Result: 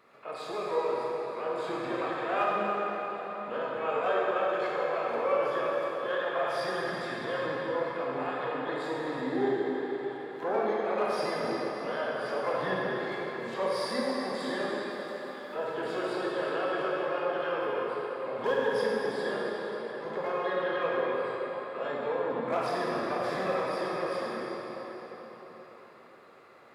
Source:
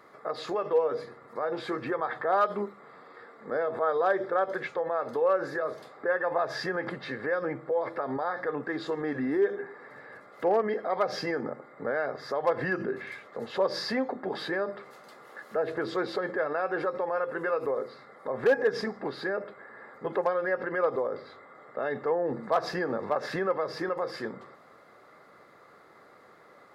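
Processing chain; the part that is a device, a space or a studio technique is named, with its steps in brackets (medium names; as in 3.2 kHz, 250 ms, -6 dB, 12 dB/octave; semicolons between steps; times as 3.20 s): shimmer-style reverb (harmony voices +12 st -10 dB; reverberation RT60 4.9 s, pre-delay 20 ms, DRR -5.5 dB); trim -8 dB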